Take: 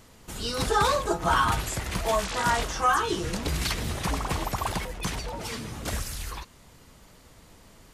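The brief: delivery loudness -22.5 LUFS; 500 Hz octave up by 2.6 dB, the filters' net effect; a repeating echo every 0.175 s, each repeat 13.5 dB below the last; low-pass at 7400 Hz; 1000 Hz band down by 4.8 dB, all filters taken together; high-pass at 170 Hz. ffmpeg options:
-af "highpass=170,lowpass=7.4k,equalizer=f=500:t=o:g=5.5,equalizer=f=1k:t=o:g=-7.5,aecho=1:1:175|350:0.211|0.0444,volume=7dB"

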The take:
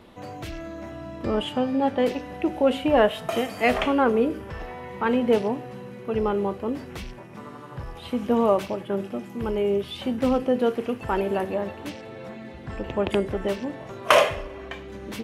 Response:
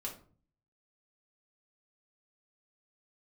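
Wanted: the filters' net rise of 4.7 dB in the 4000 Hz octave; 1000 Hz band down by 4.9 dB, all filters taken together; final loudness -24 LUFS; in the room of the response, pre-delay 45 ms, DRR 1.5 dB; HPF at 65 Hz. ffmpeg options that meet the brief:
-filter_complex "[0:a]highpass=65,equalizer=f=1k:t=o:g=-7,equalizer=f=4k:t=o:g=7.5,asplit=2[a][b];[1:a]atrim=start_sample=2205,adelay=45[c];[b][c]afir=irnorm=-1:irlink=0,volume=-1dB[d];[a][d]amix=inputs=2:normalize=0,volume=-1dB"

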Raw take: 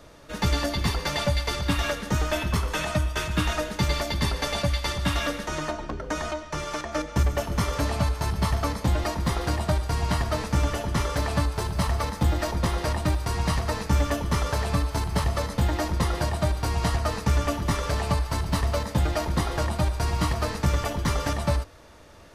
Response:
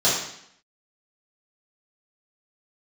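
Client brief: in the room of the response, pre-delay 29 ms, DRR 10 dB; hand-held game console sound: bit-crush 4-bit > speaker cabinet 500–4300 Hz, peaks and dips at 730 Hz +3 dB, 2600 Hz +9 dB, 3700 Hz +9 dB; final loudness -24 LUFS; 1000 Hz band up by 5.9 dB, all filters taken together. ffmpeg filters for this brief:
-filter_complex "[0:a]equalizer=f=1k:t=o:g=6.5,asplit=2[a][b];[1:a]atrim=start_sample=2205,adelay=29[c];[b][c]afir=irnorm=-1:irlink=0,volume=-27dB[d];[a][d]amix=inputs=2:normalize=0,acrusher=bits=3:mix=0:aa=0.000001,highpass=500,equalizer=f=730:t=q:w=4:g=3,equalizer=f=2.6k:t=q:w=4:g=9,equalizer=f=3.7k:t=q:w=4:g=9,lowpass=f=4.3k:w=0.5412,lowpass=f=4.3k:w=1.3066,volume=-1.5dB"

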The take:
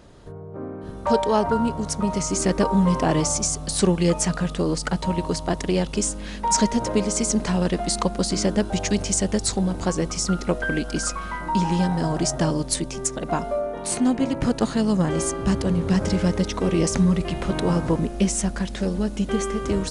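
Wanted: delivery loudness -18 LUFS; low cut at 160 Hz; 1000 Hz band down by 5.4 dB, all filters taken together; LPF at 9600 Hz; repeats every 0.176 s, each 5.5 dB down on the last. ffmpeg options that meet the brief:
-af "highpass=160,lowpass=9.6k,equalizer=f=1k:t=o:g=-6.5,aecho=1:1:176|352|528|704|880|1056|1232:0.531|0.281|0.149|0.079|0.0419|0.0222|0.0118,volume=5.5dB"

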